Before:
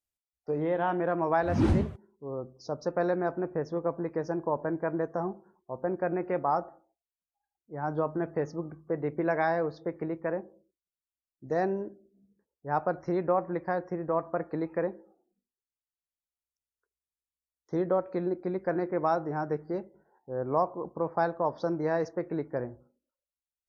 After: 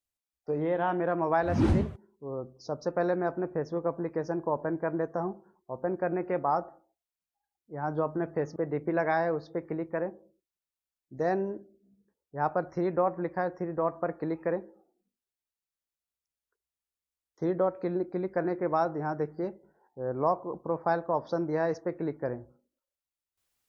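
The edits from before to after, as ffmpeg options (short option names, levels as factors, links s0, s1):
-filter_complex "[0:a]asplit=2[s0][s1];[s0]atrim=end=8.562[s2];[s1]atrim=start=8.868[s3];[s2][s3]acrossfade=d=0.004:c1=hsin:c2=hsin"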